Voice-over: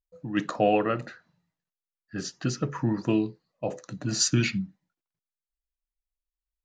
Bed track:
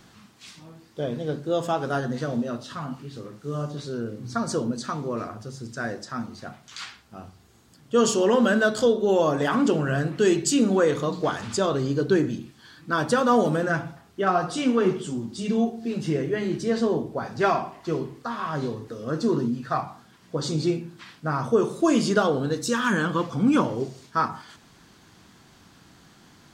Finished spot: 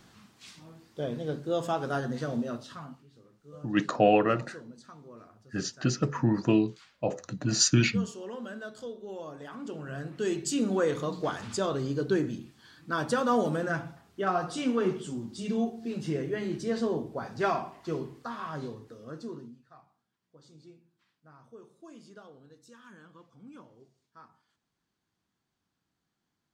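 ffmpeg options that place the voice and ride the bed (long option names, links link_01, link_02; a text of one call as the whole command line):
ffmpeg -i stem1.wav -i stem2.wav -filter_complex "[0:a]adelay=3400,volume=1dB[link_01];[1:a]volume=9.5dB,afade=type=out:start_time=2.51:duration=0.55:silence=0.16788,afade=type=in:start_time=9.59:duration=1.26:silence=0.199526,afade=type=out:start_time=18.16:duration=1.48:silence=0.0668344[link_02];[link_01][link_02]amix=inputs=2:normalize=0" out.wav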